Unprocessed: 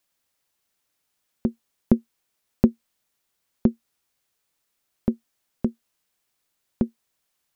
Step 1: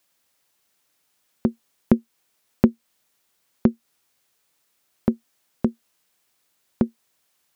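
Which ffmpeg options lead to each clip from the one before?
-filter_complex "[0:a]highpass=f=110:p=1,asplit=2[s0][s1];[s1]acompressor=threshold=0.0447:ratio=6,volume=1.12[s2];[s0][s2]amix=inputs=2:normalize=0"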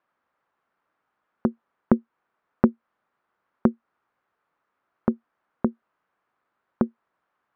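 -af "lowpass=f=1300:t=q:w=2,equalizer=f=79:w=0.67:g=-4.5,volume=0.891"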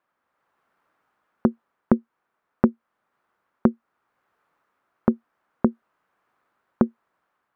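-af "dynaudnorm=f=170:g=5:m=2"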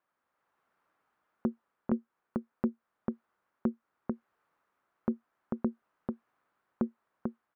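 -filter_complex "[0:a]asplit=2[s0][s1];[s1]adelay=443.1,volume=0.316,highshelf=f=4000:g=-9.97[s2];[s0][s2]amix=inputs=2:normalize=0,alimiter=limit=0.316:level=0:latency=1:release=34,volume=0.501"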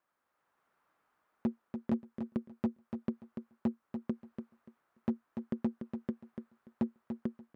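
-af "asoftclip=type=hard:threshold=0.0596,aecho=1:1:290|580|870:0.422|0.0843|0.0169"

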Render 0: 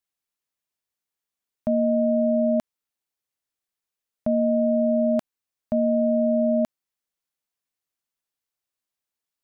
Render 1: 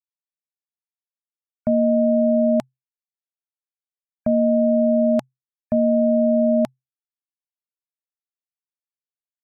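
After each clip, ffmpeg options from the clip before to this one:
-af "afftfilt=real='re*gte(hypot(re,im),0.00316)':imag='im*gte(hypot(re,im),0.00316)':win_size=1024:overlap=0.75,equalizer=f=130:w=7.3:g=9,bandreject=f=850:w=13,volume=1.5"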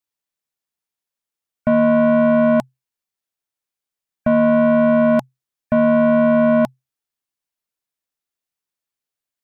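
-af "asoftclip=type=tanh:threshold=0.112,volume=2.66"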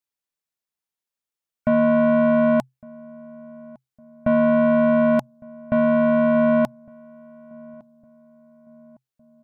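-filter_complex "[0:a]asplit=2[s0][s1];[s1]adelay=1158,lowpass=f=840:p=1,volume=0.075,asplit=2[s2][s3];[s3]adelay=1158,lowpass=f=840:p=1,volume=0.48,asplit=2[s4][s5];[s5]adelay=1158,lowpass=f=840:p=1,volume=0.48[s6];[s0][s2][s4][s6]amix=inputs=4:normalize=0,volume=0.708"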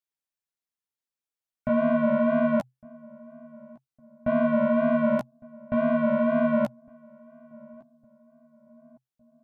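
-af "flanger=delay=7.2:depth=9.5:regen=3:speed=2:shape=sinusoidal,volume=0.75"

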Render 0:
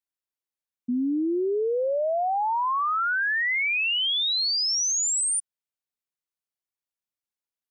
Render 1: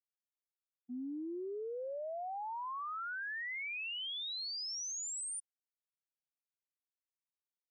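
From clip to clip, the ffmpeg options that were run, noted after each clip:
-af "agate=range=0.0224:threshold=0.112:ratio=3:detection=peak,volume=0.376"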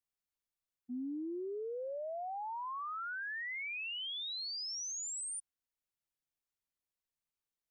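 -af "lowshelf=f=110:g=11.5"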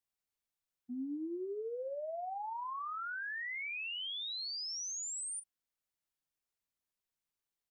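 -filter_complex "[0:a]asplit=2[s0][s1];[s1]adelay=38,volume=0.224[s2];[s0][s2]amix=inputs=2:normalize=0"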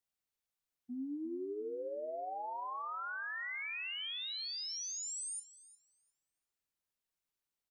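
-filter_complex "[0:a]asplit=2[s0][s1];[s1]adelay=354,lowpass=f=3200:p=1,volume=0.316,asplit=2[s2][s3];[s3]adelay=354,lowpass=f=3200:p=1,volume=0.39,asplit=2[s4][s5];[s5]adelay=354,lowpass=f=3200:p=1,volume=0.39,asplit=2[s6][s7];[s7]adelay=354,lowpass=f=3200:p=1,volume=0.39[s8];[s0][s2][s4][s6][s8]amix=inputs=5:normalize=0,volume=0.891"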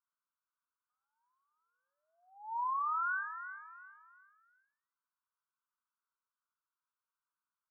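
-af "asuperpass=centerf=1200:order=12:qfactor=1.9,volume=2.37"

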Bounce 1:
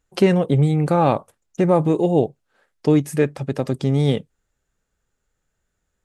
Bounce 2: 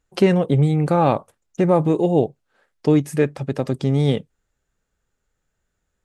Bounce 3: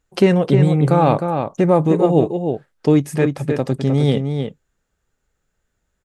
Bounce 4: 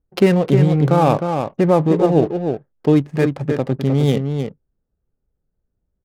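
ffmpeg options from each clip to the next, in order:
-af "highshelf=f=9200:g=-4.5"
-filter_complex "[0:a]asplit=2[s0][s1];[s1]adelay=309,volume=0.501,highshelf=f=4000:g=-6.95[s2];[s0][s2]amix=inputs=2:normalize=0,volume=1.26"
-af "adynamicsmooth=sensitivity=5.5:basefreq=520"

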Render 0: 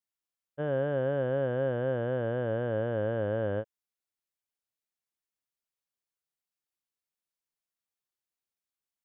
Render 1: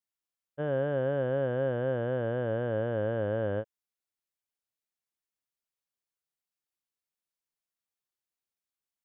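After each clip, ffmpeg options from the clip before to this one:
-af anull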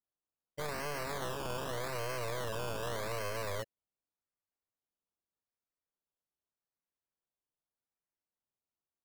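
-af "adynamicsmooth=sensitivity=5.5:basefreq=2500,acrusher=samples=17:mix=1:aa=0.000001:lfo=1:lforange=10.2:lforate=0.84,aeval=exprs='0.0224*(abs(mod(val(0)/0.0224+3,4)-2)-1)':c=same"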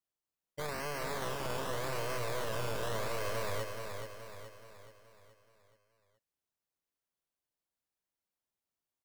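-af "aecho=1:1:425|850|1275|1700|2125|2550:0.501|0.241|0.115|0.0554|0.0266|0.0128"

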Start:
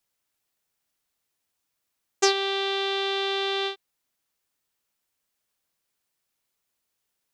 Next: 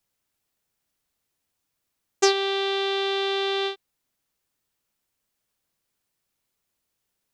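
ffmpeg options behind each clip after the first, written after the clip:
-af "lowshelf=f=360:g=6.5"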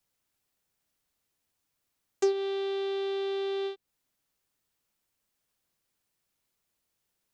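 -filter_complex "[0:a]acrossover=split=500[s0][s1];[s1]acompressor=threshold=0.0141:ratio=8[s2];[s0][s2]amix=inputs=2:normalize=0,volume=0.841"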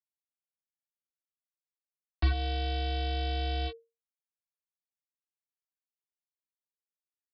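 -af "aresample=11025,acrusher=bits=4:mix=0:aa=0.5,aresample=44100,afreqshift=-460"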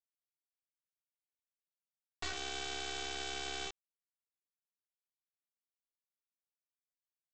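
-af "highpass=f=1200:p=1,aresample=16000,acrusher=bits=4:dc=4:mix=0:aa=0.000001,aresample=44100,volume=1.33"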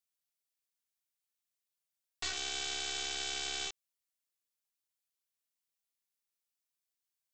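-af "highshelf=f=2100:g=11,volume=0.668"

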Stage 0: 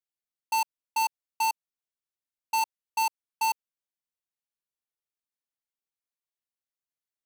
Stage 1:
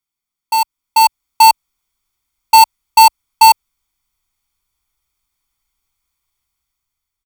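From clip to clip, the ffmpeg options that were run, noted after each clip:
-af "asubboost=boost=9.5:cutoff=60,aecho=1:1:0.9:0.68,dynaudnorm=f=290:g=7:m=3.16,volume=2.51"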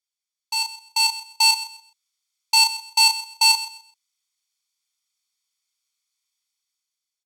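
-filter_complex "[0:a]bandpass=f=5200:t=q:w=1.2:csg=0,asplit=2[s0][s1];[s1]adelay=34,volume=0.562[s2];[s0][s2]amix=inputs=2:normalize=0,aecho=1:1:129|258|387:0.178|0.0427|0.0102"

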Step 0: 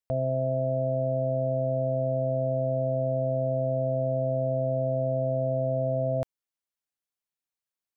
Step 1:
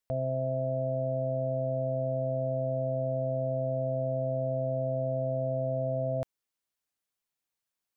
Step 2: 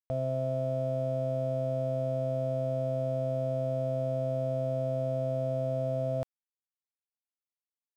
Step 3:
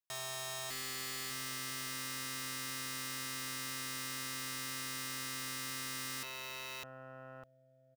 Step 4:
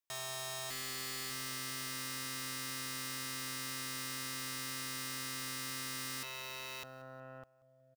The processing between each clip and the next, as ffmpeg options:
-af "alimiter=level_in=1.5:limit=0.0631:level=0:latency=1:release=10,volume=0.668,volume=1.5"
-af "aeval=exprs='sgn(val(0))*max(abs(val(0))-0.00178,0)':c=same"
-af "aecho=1:1:603|1206|1809:0.316|0.0854|0.0231,aeval=exprs='(mod(75*val(0)+1,2)-1)/75':c=same,aeval=exprs='0.0133*(cos(1*acos(clip(val(0)/0.0133,-1,1)))-cos(1*PI/2))+0.00335*(cos(7*acos(clip(val(0)/0.0133,-1,1)))-cos(7*PI/2))':c=same"
-af "aecho=1:1:183|366|549:0.0891|0.0348|0.0136"

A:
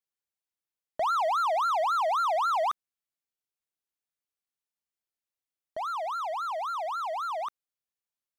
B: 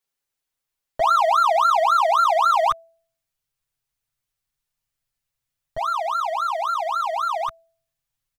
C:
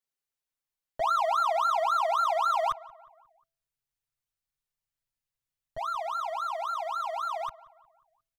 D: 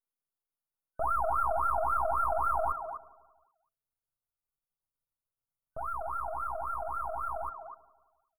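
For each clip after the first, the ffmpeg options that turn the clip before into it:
-af "bandreject=f=330.5:t=h:w=4,bandreject=f=661:t=h:w=4,asubboost=boost=11.5:cutoff=96,aecho=1:1:7.4:0.99,volume=2"
-filter_complex "[0:a]asplit=2[s0][s1];[s1]adelay=179,lowpass=f=2200:p=1,volume=0.1,asplit=2[s2][s3];[s3]adelay=179,lowpass=f=2200:p=1,volume=0.51,asplit=2[s4][s5];[s5]adelay=179,lowpass=f=2200:p=1,volume=0.51,asplit=2[s6][s7];[s7]adelay=179,lowpass=f=2200:p=1,volume=0.51[s8];[s0][s2][s4][s6][s8]amix=inputs=5:normalize=0,volume=0.376"
-filter_complex "[0:a]aeval=exprs='if(lt(val(0),0),0.251*val(0),val(0))':c=same,asplit=2[s0][s1];[s1]adelay=250,highpass=300,lowpass=3400,asoftclip=type=hard:threshold=0.0531,volume=0.398[s2];[s0][s2]amix=inputs=2:normalize=0,afftfilt=real='re*(1-between(b*sr/4096,1500,8800))':imag='im*(1-between(b*sr/4096,1500,8800))':win_size=4096:overlap=0.75"

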